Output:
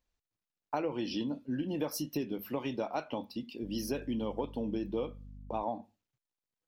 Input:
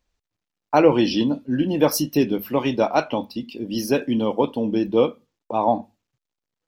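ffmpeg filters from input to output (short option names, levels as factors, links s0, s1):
-filter_complex "[0:a]acompressor=threshold=0.0794:ratio=5,asettb=1/sr,asplit=3[s0][s1][s2];[s0]atrim=end=3.634[s3];[s1]atrim=start=3.63:end=5.63,asetpts=PTS-STARTPTS,afade=t=in:d=0.004:c=qsin,afade=t=out:st=1.996:d=0.004:c=qsin,aeval=exprs='val(0)+0.0126*(sin(2*PI*50*n/s)+sin(2*PI*2*50*n/s)/2+sin(2*PI*3*50*n/s)/3+sin(2*PI*4*50*n/s)/4+sin(2*PI*5*50*n/s)/5)':c=same[s4];[s2]atrim=start=5.626[s5];[s3][s4]acrossfade=d=0.004:c1=hsin:c2=qsin[s6];[s6][s5]acrossfade=d=0.004:c1=qsin:c2=hsin,volume=0.355"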